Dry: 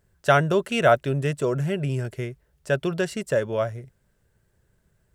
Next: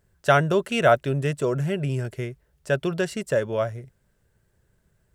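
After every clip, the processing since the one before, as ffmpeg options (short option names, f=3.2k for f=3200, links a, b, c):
-af anull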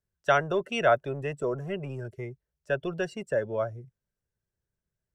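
-filter_complex "[0:a]afftdn=nr=17:nf=-34,equalizer=f=5.7k:t=o:w=0.3:g=6.5,acrossover=split=320|550|4300[a][b][c][d];[a]asoftclip=type=tanh:threshold=-32.5dB[e];[e][b][c][d]amix=inputs=4:normalize=0,volume=-4dB"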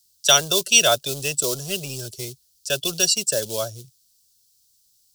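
-filter_complex "[0:a]equalizer=f=4.6k:w=2.7:g=5.5,acrossover=split=260|350|1700[a][b][c][d];[b]acrusher=bits=3:mode=log:mix=0:aa=0.000001[e];[a][e][c][d]amix=inputs=4:normalize=0,aexciter=amount=14.2:drive=8.9:freq=3.2k,volume=1.5dB"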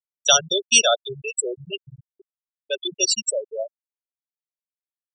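-af "afftfilt=real='re*gte(hypot(re,im),0.224)':imag='im*gte(hypot(re,im),0.224)':win_size=1024:overlap=0.75"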